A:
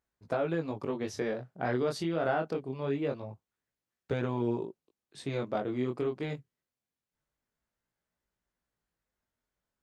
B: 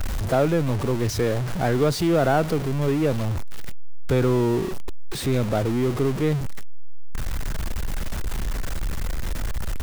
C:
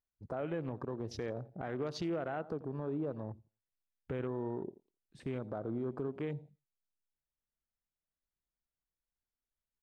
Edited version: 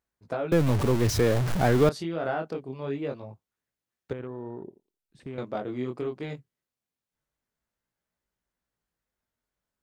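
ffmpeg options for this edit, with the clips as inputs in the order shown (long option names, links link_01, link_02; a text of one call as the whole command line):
ffmpeg -i take0.wav -i take1.wav -i take2.wav -filter_complex "[0:a]asplit=3[link_01][link_02][link_03];[link_01]atrim=end=0.522[link_04];[1:a]atrim=start=0.518:end=1.892[link_05];[link_02]atrim=start=1.888:end=4.132[link_06];[2:a]atrim=start=4.128:end=5.382[link_07];[link_03]atrim=start=5.378[link_08];[link_04][link_05]acrossfade=duration=0.004:curve1=hsin:curve2=hsin[link_09];[link_09][link_06]acrossfade=duration=0.004:curve1=hsin:curve2=hsin[link_10];[link_10][link_07]acrossfade=duration=0.004:curve1=hsin:curve2=hsin[link_11];[link_11][link_08]acrossfade=duration=0.004:curve1=hsin:curve2=hsin" out.wav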